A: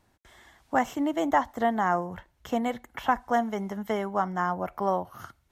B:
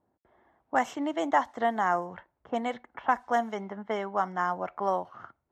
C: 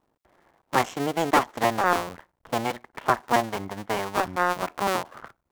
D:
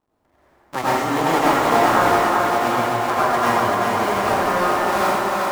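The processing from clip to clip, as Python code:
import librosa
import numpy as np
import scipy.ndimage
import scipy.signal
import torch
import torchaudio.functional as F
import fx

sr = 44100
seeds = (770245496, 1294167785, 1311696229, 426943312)

y1 = fx.highpass(x, sr, hz=380.0, slope=6)
y1 = fx.env_lowpass(y1, sr, base_hz=660.0, full_db=-23.5)
y1 = scipy.signal.sosfilt(scipy.signal.butter(2, 10000.0, 'lowpass', fs=sr, output='sos'), y1)
y2 = fx.cycle_switch(y1, sr, every=2, mode='muted')
y2 = y2 * 10.0 ** (6.5 / 20.0)
y3 = fx.echo_thinned(y2, sr, ms=387, feedback_pct=67, hz=190.0, wet_db=-3.5)
y3 = fx.rev_plate(y3, sr, seeds[0], rt60_s=2.5, hf_ratio=0.6, predelay_ms=75, drr_db=-9.5)
y3 = y3 * 10.0 ** (-4.5 / 20.0)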